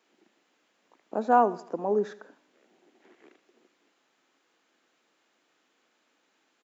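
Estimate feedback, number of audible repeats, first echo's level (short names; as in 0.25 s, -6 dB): 44%, 3, -18.0 dB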